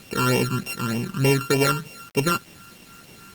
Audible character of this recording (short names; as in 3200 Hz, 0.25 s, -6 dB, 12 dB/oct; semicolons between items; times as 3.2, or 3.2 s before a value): a buzz of ramps at a fixed pitch in blocks of 32 samples; phasing stages 12, 3.3 Hz, lowest notch 640–1400 Hz; a quantiser's noise floor 8-bit, dither none; Opus